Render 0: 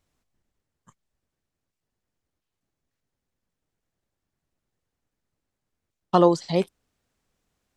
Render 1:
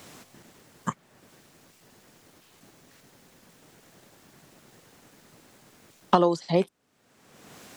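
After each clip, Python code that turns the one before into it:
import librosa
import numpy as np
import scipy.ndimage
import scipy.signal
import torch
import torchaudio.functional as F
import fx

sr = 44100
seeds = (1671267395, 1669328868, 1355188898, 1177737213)

y = fx.band_squash(x, sr, depth_pct=100)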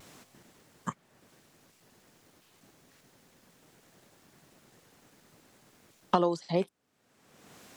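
y = fx.vibrato(x, sr, rate_hz=0.32, depth_cents=11.0)
y = F.gain(torch.from_numpy(y), -5.5).numpy()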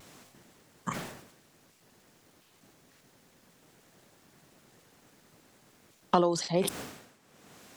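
y = fx.sustainer(x, sr, db_per_s=68.0)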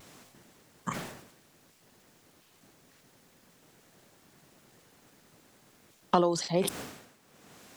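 y = fx.quant_dither(x, sr, seeds[0], bits=12, dither='triangular')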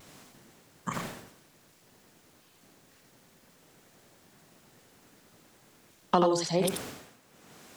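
y = x + 10.0 ** (-5.0 / 20.0) * np.pad(x, (int(84 * sr / 1000.0), 0))[:len(x)]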